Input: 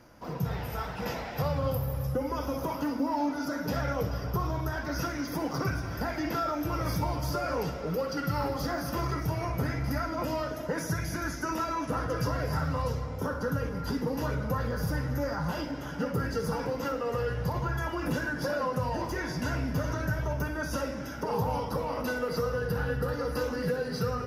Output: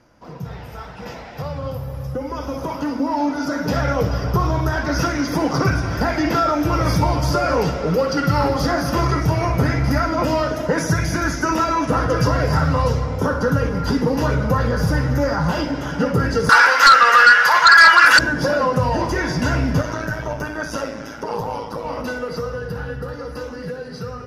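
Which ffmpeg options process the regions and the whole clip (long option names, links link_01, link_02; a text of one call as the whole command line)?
ffmpeg -i in.wav -filter_complex "[0:a]asettb=1/sr,asplit=3[link_01][link_02][link_03];[link_01]atrim=end=16.494[link_04];[link_02]atrim=start=16.49:end=18.19,asetpts=PTS-STARTPTS,afade=type=in:duration=0.004:curve=qsin,afade=type=out:start_time=1.696:duration=0.004:curve=qsin,highpass=frequency=1500:width_type=q:width=3.7,aeval=exprs='0.15*sin(PI/2*2.82*val(0)/0.15)':channel_layout=same[link_05];[link_03]atrim=start=18.186[link_06];[link_04][link_05]acrossfade=duration=0.004:curve1=hsin:curve2=qsin[link_07];[link_07][link_06]acrossfade=duration=0.004:curve1=qsin:curve2=hsin,asettb=1/sr,asplit=3[link_08][link_09][link_10];[link_08]atrim=end=19.814[link_11];[link_09]atrim=start=19.81:end=21.85,asetpts=PTS-STARTPTS,afade=type=in:duration=0.004:curve=qsin,afade=type=out:start_time=2.036:duration=0.004:curve=qsin,lowshelf=frequency=130:gain=-11.5,tremolo=f=110:d=0.571[link_12];[link_10]atrim=start=21.846[link_13];[link_11][link_12]acrossfade=duration=0.004:curve1=hsin:curve2=qsin[link_14];[link_14][link_13]acrossfade=duration=0.004:curve1=qsin:curve2=hsin,lowpass=8800,dynaudnorm=framelen=200:gausssize=31:maxgain=12.5dB" out.wav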